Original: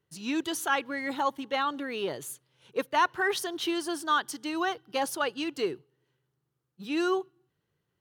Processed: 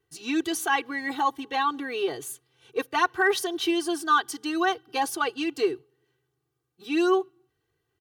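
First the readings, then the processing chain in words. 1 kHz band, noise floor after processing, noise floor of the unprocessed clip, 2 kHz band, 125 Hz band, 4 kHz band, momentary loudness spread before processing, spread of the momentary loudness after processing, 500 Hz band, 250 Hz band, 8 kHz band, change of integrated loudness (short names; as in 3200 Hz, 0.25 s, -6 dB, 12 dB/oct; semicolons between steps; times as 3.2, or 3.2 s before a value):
+3.5 dB, -79 dBFS, -81 dBFS, +3.5 dB, n/a, +2.5 dB, 9 LU, 9 LU, +4.0 dB, +4.0 dB, +3.0 dB, +3.5 dB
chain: comb 2.6 ms, depth 97%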